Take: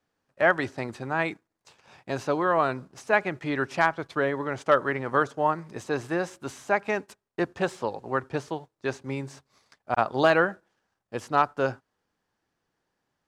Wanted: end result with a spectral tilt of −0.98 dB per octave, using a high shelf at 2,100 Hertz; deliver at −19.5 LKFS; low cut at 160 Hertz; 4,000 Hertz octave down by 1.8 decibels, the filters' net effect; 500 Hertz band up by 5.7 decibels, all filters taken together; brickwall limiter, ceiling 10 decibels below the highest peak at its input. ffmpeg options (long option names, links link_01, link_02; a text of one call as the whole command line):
ffmpeg -i in.wav -af "highpass=160,equalizer=frequency=500:width_type=o:gain=7,highshelf=frequency=2100:gain=4.5,equalizer=frequency=4000:width_type=o:gain=-7,volume=8dB,alimiter=limit=-6.5dB:level=0:latency=1" out.wav